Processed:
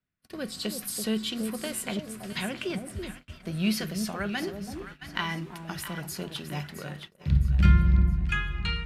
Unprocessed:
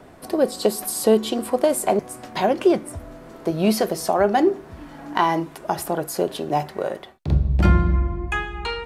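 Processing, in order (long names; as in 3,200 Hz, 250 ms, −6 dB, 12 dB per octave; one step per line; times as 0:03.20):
drawn EQ curve 190 Hz 0 dB, 320 Hz −13 dB, 820 Hz −18 dB, 1,400 Hz −2 dB, 2,700 Hz +3 dB, 8,100 Hz −4 dB
on a send: delay that swaps between a low-pass and a high-pass 332 ms, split 840 Hz, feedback 60%, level −6 dB
on the sum: noise gate −39 dBFS, range −33 dB
level −3.5 dB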